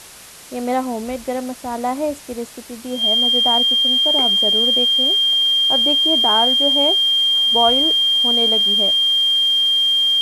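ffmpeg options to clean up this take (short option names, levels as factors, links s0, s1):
-af "bandreject=f=3200:w=30,afwtdn=0.013"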